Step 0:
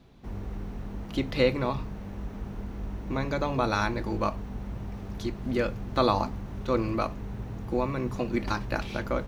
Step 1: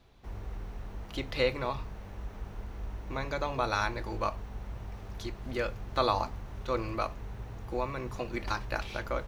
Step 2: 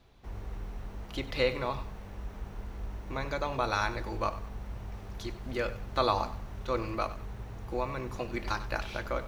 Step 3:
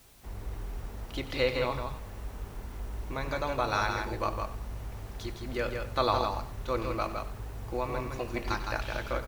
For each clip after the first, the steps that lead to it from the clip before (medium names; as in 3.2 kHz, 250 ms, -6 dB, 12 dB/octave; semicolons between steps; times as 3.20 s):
peaking EQ 210 Hz -11 dB 1.6 oct; trim -1.5 dB
bit-crushed delay 95 ms, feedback 35%, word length 9-bit, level -14.5 dB
delay 162 ms -5 dB; word length cut 10-bit, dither triangular